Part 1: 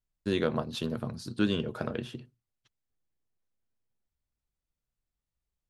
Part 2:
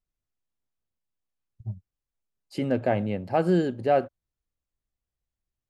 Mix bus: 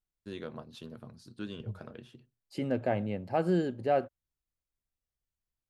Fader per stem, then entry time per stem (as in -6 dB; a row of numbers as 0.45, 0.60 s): -13.0, -5.5 dB; 0.00, 0.00 s